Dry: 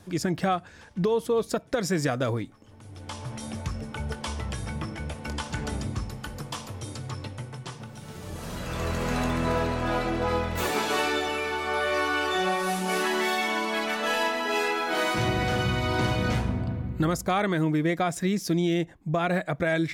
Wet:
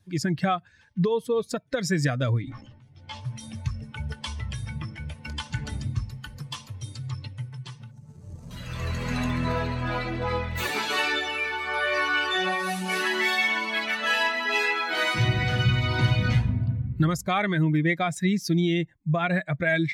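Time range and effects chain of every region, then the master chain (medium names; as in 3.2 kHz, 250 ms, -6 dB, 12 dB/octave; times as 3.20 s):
2.42–3.21 s: distance through air 80 m + doubling 15 ms -2.5 dB + decay stretcher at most 37 dB/s
7.91–8.51 s: median filter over 25 samples + low-pass 11 kHz + resonant high shelf 4.8 kHz +10.5 dB, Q 1.5
whole clip: expander on every frequency bin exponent 1.5; graphic EQ 125/2000/4000 Hz +10/+8/+5 dB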